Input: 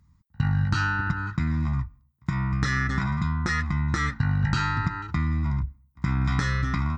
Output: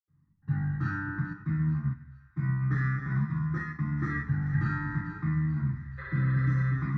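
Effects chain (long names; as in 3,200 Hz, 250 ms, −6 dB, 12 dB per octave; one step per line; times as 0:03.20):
parametric band 640 Hz −6.5 dB 0.53 octaves
convolution reverb, pre-delay 76 ms
0:06.01–0:06.61: healed spectral selection 370–4,900 Hz after
high shelf with overshoot 2,200 Hz −7.5 dB, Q 3
delay with a high-pass on its return 434 ms, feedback 63%, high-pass 1,700 Hz, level −11.5 dB
0:01.33–0:03.79: expander for the loud parts 1.5 to 1, over −43 dBFS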